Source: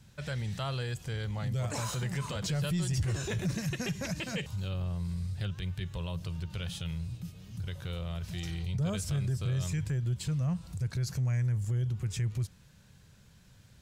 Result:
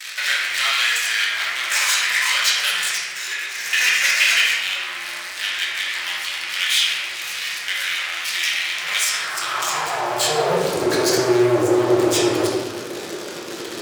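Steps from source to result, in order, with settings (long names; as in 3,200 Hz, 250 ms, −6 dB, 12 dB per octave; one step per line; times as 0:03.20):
in parallel at −10.5 dB: fuzz pedal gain 56 dB, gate −55 dBFS
0:02.97–0:03.66: on the sum: four-pole ladder high-pass 220 Hz, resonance 40%
convolution reverb RT60 1.4 s, pre-delay 6 ms, DRR −4.5 dB
high-pass filter sweep 2,000 Hz → 390 Hz, 0:09.07–0:10.76
level +2.5 dB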